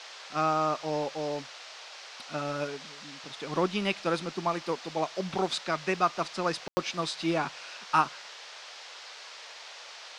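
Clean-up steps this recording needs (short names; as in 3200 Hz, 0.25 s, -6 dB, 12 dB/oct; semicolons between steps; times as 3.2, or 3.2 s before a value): room tone fill 6.68–6.77; noise print and reduce 29 dB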